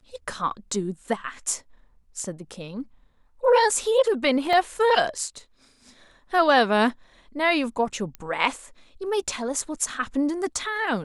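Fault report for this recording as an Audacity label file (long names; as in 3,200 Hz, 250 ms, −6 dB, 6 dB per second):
4.530000	4.530000	drop-out 2.6 ms
8.150000	8.150000	click −20 dBFS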